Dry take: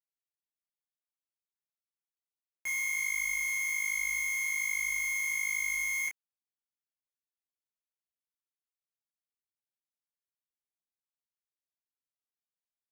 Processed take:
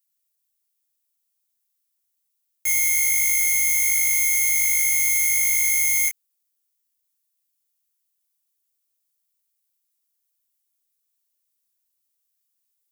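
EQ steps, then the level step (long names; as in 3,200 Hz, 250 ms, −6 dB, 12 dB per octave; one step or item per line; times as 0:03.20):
spectral tilt +4 dB per octave
low-shelf EQ 490 Hz +9.5 dB
high-shelf EQ 5,100 Hz +7 dB
0.0 dB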